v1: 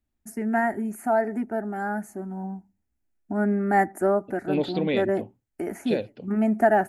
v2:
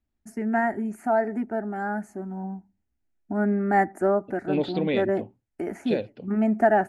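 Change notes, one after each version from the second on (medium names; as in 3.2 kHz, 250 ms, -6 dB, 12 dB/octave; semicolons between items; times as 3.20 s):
master: add distance through air 57 m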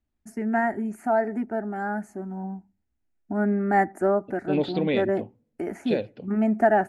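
reverb: on, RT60 0.90 s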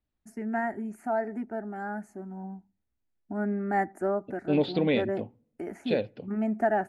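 first voice -6.0 dB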